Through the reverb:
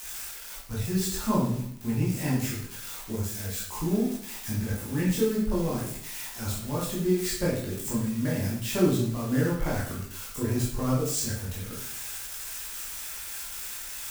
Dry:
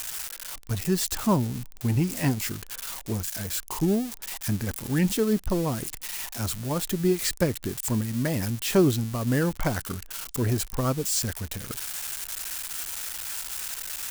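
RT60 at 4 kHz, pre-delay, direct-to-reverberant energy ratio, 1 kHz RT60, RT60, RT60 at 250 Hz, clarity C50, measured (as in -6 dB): 0.55 s, 13 ms, -7.0 dB, 0.65 s, 0.65 s, 0.75 s, 2.5 dB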